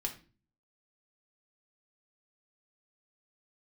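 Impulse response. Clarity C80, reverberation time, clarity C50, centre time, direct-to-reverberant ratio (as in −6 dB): 16.5 dB, 0.40 s, 11.5 dB, 11 ms, 1.5 dB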